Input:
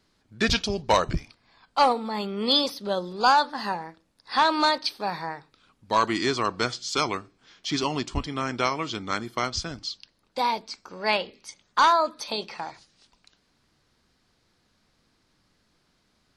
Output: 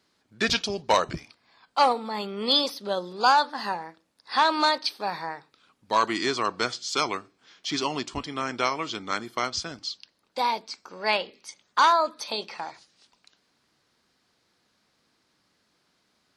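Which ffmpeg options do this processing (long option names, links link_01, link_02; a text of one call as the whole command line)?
ffmpeg -i in.wav -af "highpass=frequency=270:poles=1" out.wav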